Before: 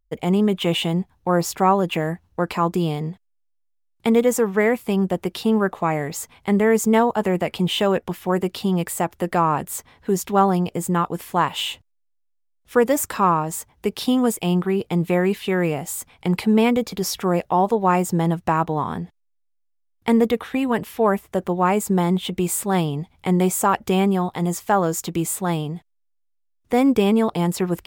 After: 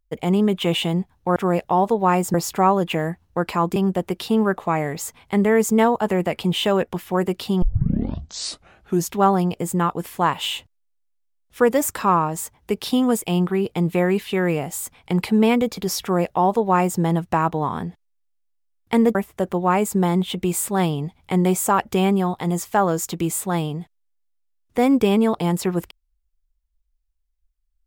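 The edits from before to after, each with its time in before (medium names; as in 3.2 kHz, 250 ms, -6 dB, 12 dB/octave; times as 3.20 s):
2.78–4.91 s: delete
8.77 s: tape start 1.49 s
17.17–18.15 s: copy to 1.36 s
20.30–21.10 s: delete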